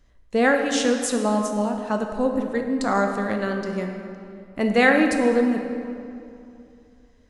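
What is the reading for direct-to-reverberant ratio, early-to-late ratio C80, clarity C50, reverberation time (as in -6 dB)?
3.5 dB, 6.0 dB, 5.0 dB, 2.7 s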